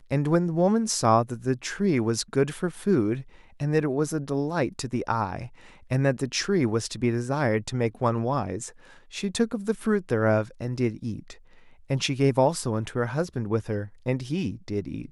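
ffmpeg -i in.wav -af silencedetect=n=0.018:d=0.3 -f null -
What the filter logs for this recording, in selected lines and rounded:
silence_start: 3.22
silence_end: 3.60 | silence_duration: 0.39
silence_start: 5.47
silence_end: 5.91 | silence_duration: 0.44
silence_start: 8.69
silence_end: 9.13 | silence_duration: 0.44
silence_start: 11.32
silence_end: 11.90 | silence_duration: 0.58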